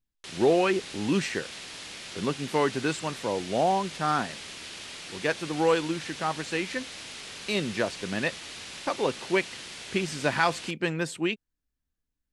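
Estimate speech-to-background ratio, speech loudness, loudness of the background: 10.5 dB, -28.5 LUFS, -39.0 LUFS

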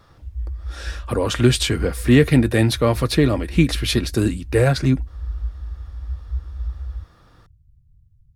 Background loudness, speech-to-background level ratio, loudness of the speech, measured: -32.5 LUFS, 13.5 dB, -19.0 LUFS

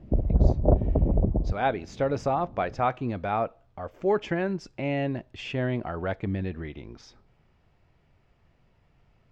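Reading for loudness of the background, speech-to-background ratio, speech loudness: -25.0 LUFS, -4.5 dB, -29.5 LUFS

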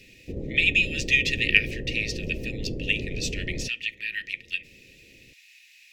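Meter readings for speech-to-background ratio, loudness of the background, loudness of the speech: 9.5 dB, -35.0 LUFS, -25.5 LUFS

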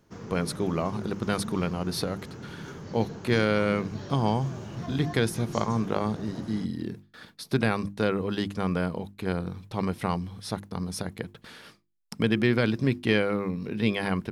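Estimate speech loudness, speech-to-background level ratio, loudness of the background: -28.5 LUFS, 12.0 dB, -40.5 LUFS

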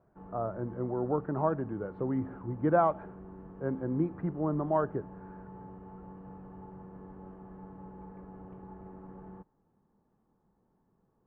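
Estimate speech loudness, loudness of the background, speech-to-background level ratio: -32.0 LUFS, -48.5 LUFS, 16.5 dB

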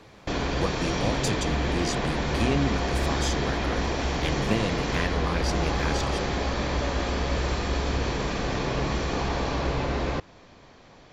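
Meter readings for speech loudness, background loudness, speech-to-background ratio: -31.5 LUFS, -27.5 LUFS, -4.0 dB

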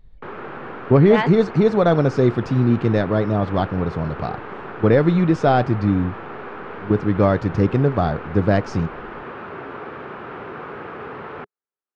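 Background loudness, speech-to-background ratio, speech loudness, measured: -34.0 LUFS, 15.0 dB, -19.0 LUFS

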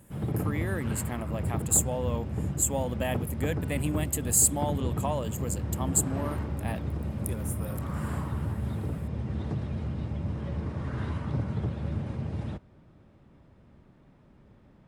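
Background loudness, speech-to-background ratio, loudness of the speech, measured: -33.0 LUFS, 3.0 dB, -30.0 LUFS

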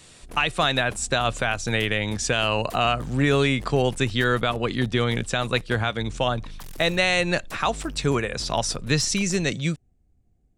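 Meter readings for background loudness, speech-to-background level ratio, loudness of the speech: -43.0 LUFS, 19.5 dB, -23.5 LUFS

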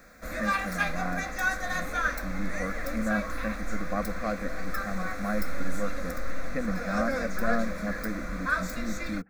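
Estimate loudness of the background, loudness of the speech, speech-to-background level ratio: -33.0 LUFS, -35.0 LUFS, -2.0 dB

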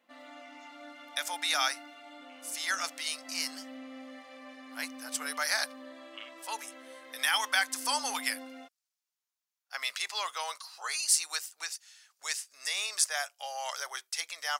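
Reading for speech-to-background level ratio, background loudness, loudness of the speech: 16.0 dB, -48.0 LUFS, -32.0 LUFS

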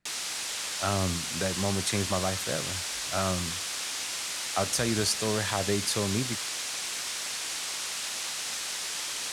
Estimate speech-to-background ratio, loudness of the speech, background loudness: 1.0 dB, -30.5 LUFS, -31.5 LUFS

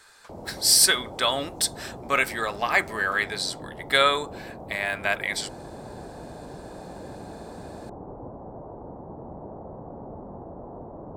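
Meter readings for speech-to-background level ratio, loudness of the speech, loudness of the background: 18.0 dB, -23.0 LUFS, -41.0 LUFS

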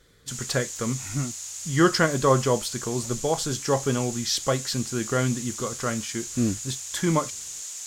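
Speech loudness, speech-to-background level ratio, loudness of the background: -26.0 LUFS, 7.5 dB, -33.5 LUFS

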